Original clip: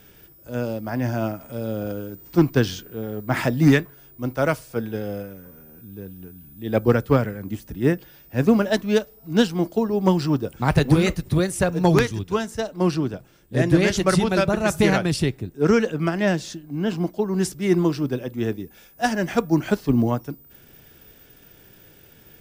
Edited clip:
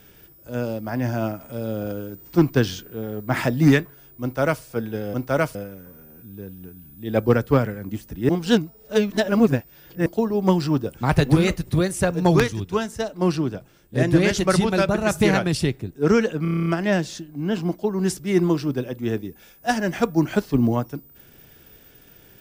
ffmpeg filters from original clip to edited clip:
-filter_complex "[0:a]asplit=13[s0][s1][s2][s3][s4][s5][s6][s7][s8][s9][s10][s11][s12];[s0]atrim=end=5.142[s13];[s1]atrim=start=4.218:end=4.632[s14];[s2]atrim=start=5.138:end=7.882[s15];[s3]atrim=start=7.878:end=9.652,asetpts=PTS-STARTPTS,areverse[s16];[s4]atrim=start=9.648:end=16.042[s17];[s5]atrim=start=16.008:end=16.042[s18];[s6]atrim=start=16.008:end=16.042[s19];[s7]atrim=start=16.008:end=16.042[s20];[s8]atrim=start=16.008:end=16.042[s21];[s9]atrim=start=16.008:end=16.042[s22];[s10]atrim=start=16.008:end=16.042[s23];[s11]atrim=start=16.008:end=16.042[s24];[s12]atrim=start=16.008[s25];[s13][s14]acrossfade=d=0.004:c1=hsin:c2=hsin[s26];[s26][s15]acrossfade=d=0.004:c1=hsin:c2=hsin[s27];[s27][s16]acrossfade=d=0.004:c1=hsin:c2=hsin[s28];[s28][s17]acrossfade=d=0.004:c1=hsin:c2=hsin[s29];[s29][s18]acrossfade=d=0.004:c1=hsin:c2=hsin[s30];[s30][s19]acrossfade=d=0.004:c1=hsin:c2=hsin[s31];[s31][s20]acrossfade=d=0.004:c1=hsin:c2=hsin[s32];[s32][s21]acrossfade=d=0.004:c1=hsin:c2=hsin[s33];[s33][s22]acrossfade=d=0.004:c1=hsin:c2=hsin[s34];[s34][s23]acrossfade=d=0.004:c1=hsin:c2=hsin[s35];[s35][s24]acrossfade=d=0.004:c1=hsin:c2=hsin[s36];[s36][s25]acrossfade=d=0.004:c1=hsin:c2=hsin"

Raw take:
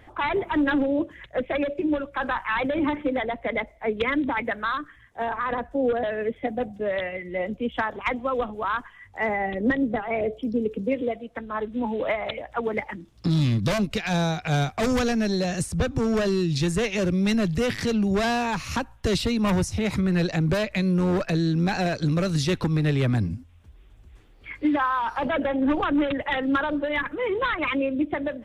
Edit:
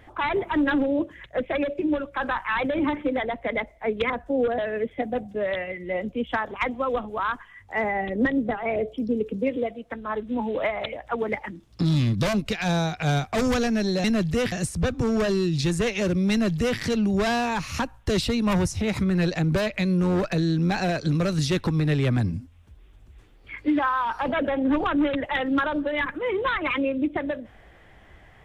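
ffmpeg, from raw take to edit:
-filter_complex "[0:a]asplit=4[s0][s1][s2][s3];[s0]atrim=end=4.102[s4];[s1]atrim=start=5.548:end=15.492[s5];[s2]atrim=start=17.278:end=17.762[s6];[s3]atrim=start=15.488[s7];[s4][s5]acrossfade=d=0.004:c1=hsin:c2=hsin[s8];[s8][s6]acrossfade=d=0.004:c1=hsin:c2=hsin[s9];[s9][s7]acrossfade=d=0.004:c1=hsin:c2=hsin"

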